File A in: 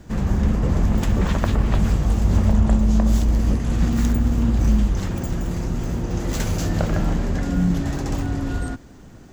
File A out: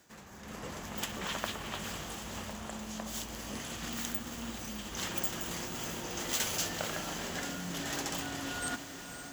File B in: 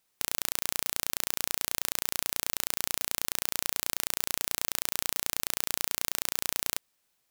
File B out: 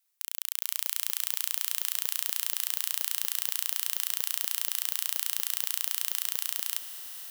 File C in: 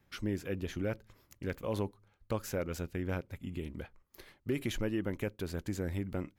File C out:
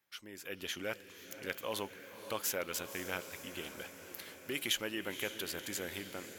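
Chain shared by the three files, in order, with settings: reverse; compression 6:1, threshold -27 dBFS; reverse; high-pass 1.4 kHz 6 dB/octave; level rider gain up to 11 dB; treble shelf 8.9 kHz +7.5 dB; on a send: echo that smears into a reverb 532 ms, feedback 65%, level -11 dB; on the sum: dynamic bell 3.1 kHz, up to +6 dB, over -54 dBFS, Q 4.3; trim -5 dB

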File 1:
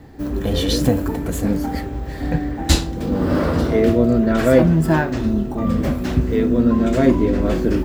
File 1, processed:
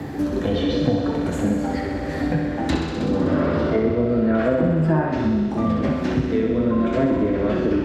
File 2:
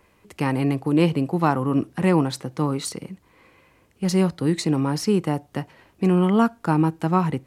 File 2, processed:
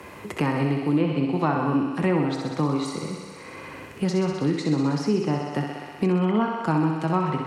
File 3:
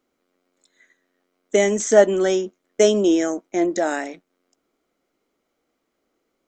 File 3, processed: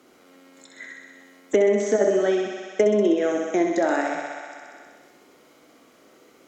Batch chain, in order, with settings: two-slope reverb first 0.58 s, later 1.5 s, DRR 8 dB; compressor with a negative ratio -12 dBFS, ratio -0.5; high-pass 69 Hz 24 dB/octave; low-pass that closes with the level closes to 750 Hz, closed at -8.5 dBFS; on a send: thinning echo 63 ms, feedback 72%, high-pass 260 Hz, level -5 dB; on the sum: three bands compressed up and down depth 70%; trim -4 dB

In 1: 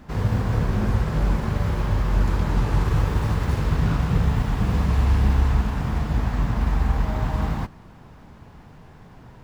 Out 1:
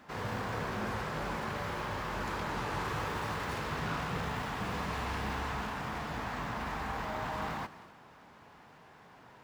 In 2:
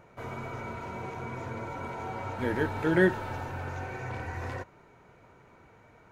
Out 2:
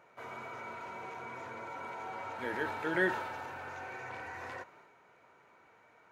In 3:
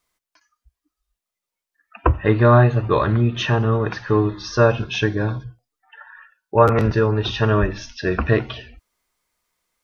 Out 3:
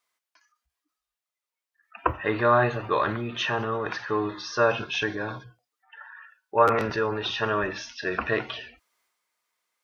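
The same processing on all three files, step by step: high-pass 1 kHz 6 dB/octave; treble shelf 3.4 kHz -6.5 dB; transient shaper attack 0 dB, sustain +5 dB

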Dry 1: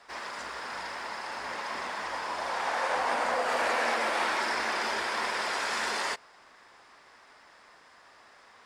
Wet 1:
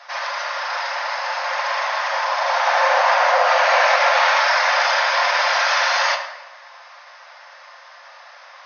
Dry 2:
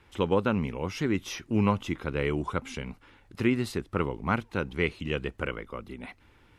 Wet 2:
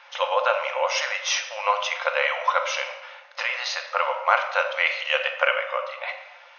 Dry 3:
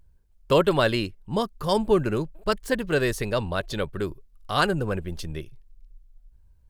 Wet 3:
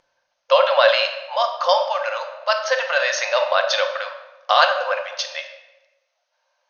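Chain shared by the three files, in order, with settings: in parallel at -0.5 dB: compressor with a negative ratio -28 dBFS, ratio -0.5; on the sum: brick-wall FIR band-pass 510–6600 Hz; simulated room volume 620 m³, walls mixed, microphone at 0.86 m; trim +6 dB

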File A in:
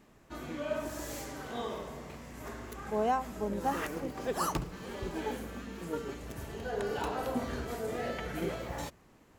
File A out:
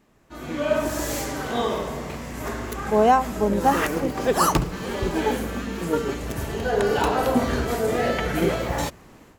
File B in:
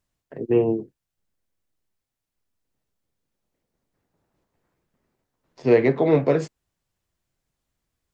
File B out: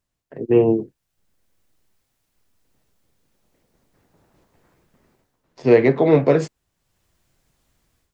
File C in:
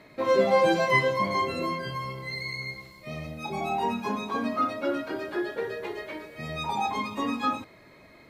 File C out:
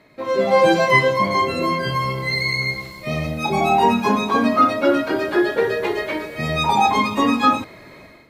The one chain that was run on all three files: level rider gain up to 14 dB; trim -1 dB

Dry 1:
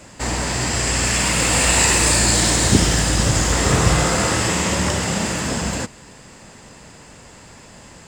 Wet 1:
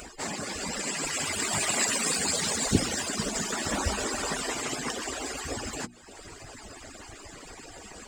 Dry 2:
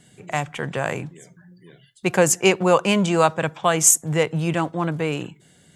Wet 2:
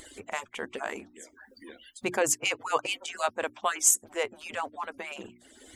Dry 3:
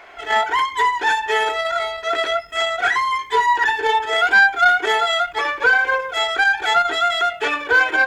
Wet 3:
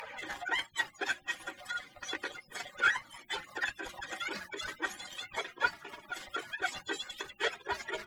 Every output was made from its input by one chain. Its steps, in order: harmonic-percussive separation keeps percussive; hum notches 60/120/180/240/300/360 Hz; upward compressor, threshold -28 dBFS; trim -6.5 dB

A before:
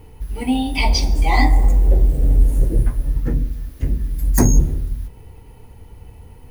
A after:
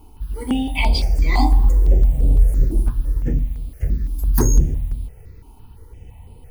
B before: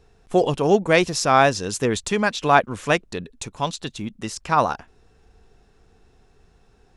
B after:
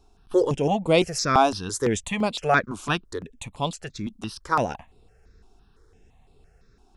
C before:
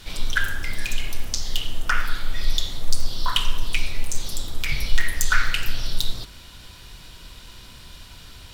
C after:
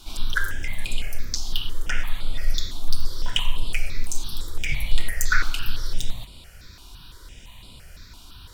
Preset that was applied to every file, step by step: stepped phaser 5.9 Hz 500–6000 Hz

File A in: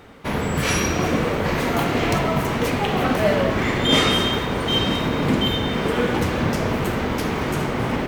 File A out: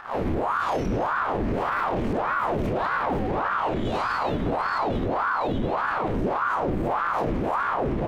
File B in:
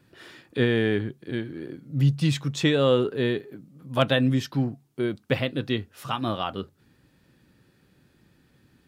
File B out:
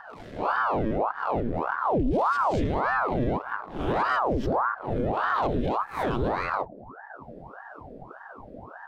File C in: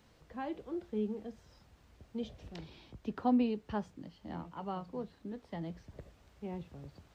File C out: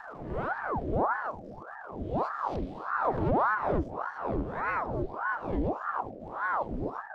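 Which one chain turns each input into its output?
reverse spectral sustain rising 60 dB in 0.60 s; high-pass 55 Hz 12 dB/octave; waveshaping leveller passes 3; tilt EQ -3 dB/octave; upward compressor, threshold -36 dBFS; tone controls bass +6 dB, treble -1 dB; compression 2:1, threshold -13 dBFS; peak limiter -8.5 dBFS; band noise 300–520 Hz -34 dBFS; ring modulator with a swept carrier 700 Hz, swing 85%, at 1.7 Hz; trim -7.5 dB

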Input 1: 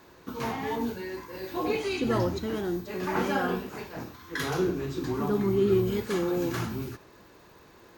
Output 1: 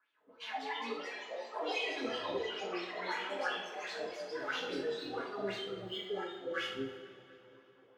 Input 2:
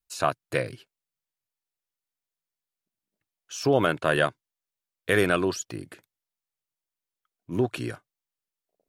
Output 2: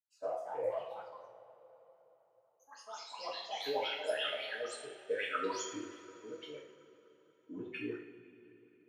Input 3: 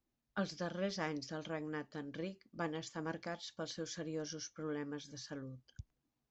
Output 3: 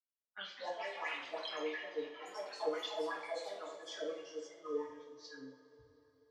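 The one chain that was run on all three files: spectral noise reduction 20 dB; wah-wah 2.9 Hz 490–3400 Hz, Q 8.3; reverse; compression 4:1, threshold -52 dBFS; reverse; ever faster or slower copies 281 ms, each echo +4 st, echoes 3, each echo -6 dB; on a send: bucket-brigade echo 244 ms, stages 4096, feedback 70%, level -22 dB; on the sum: two-slope reverb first 0.52 s, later 3.8 s, from -18 dB, DRR -6.5 dB; tape noise reduction on one side only decoder only; trim +9 dB

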